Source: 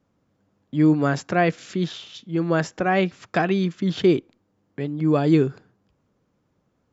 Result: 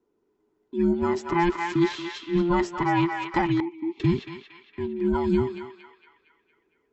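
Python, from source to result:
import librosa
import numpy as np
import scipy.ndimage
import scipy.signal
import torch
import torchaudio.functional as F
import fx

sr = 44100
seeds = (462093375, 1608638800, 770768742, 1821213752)

p1 = fx.band_invert(x, sr, width_hz=500)
p2 = fx.peak_eq(p1, sr, hz=430.0, db=10.0, octaves=0.95)
p3 = p2 + fx.echo_banded(p2, sr, ms=230, feedback_pct=58, hz=2000.0, wet_db=-3, dry=0)
p4 = fx.rider(p3, sr, range_db=5, speed_s=0.5)
p5 = fx.vowel_filter(p4, sr, vowel='u', at=(3.6, 4.0))
y = p5 * 10.0 ** (-6.0 / 20.0)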